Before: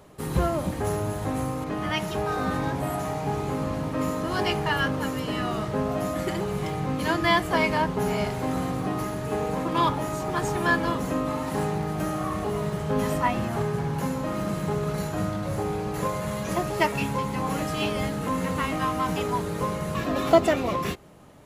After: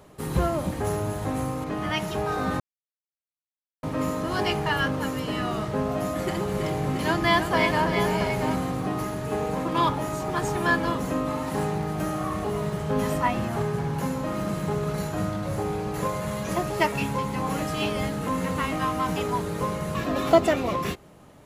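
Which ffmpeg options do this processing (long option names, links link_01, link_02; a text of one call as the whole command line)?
ffmpeg -i in.wav -filter_complex "[0:a]asettb=1/sr,asplit=3[link_01][link_02][link_03];[link_01]atrim=end=5.874[link_04];[link_02]atrim=start=5.87:end=8.56,asetpts=PTS-STARTPTS,afade=type=in:duration=0.004:curve=qsin,afade=type=out:start_time=2.686:duration=0.004:curve=qsin,aecho=1:1:327|677:0.422|0.376,atrim=end_sample=118629[link_05];[link_03]atrim=start=8.556[link_06];[link_04][link_05]acrossfade=duration=0.004:curve1=hsin:curve2=qsin[link_07];[link_07][link_06]acrossfade=duration=0.004:curve1=qsin:curve2=hsin,asplit=3[link_08][link_09][link_10];[link_08]atrim=end=2.6,asetpts=PTS-STARTPTS,afade=type=out:start_time=2.596:duration=0.004:curve=hsin[link_11];[link_09]atrim=start=2.6:end=3.83,asetpts=PTS-STARTPTS,volume=0[link_12];[link_10]atrim=start=3.83,asetpts=PTS-STARTPTS,afade=type=in:duration=0.004:curve=hsin[link_13];[link_11][link_12][link_13]concat=n=3:v=0:a=1" out.wav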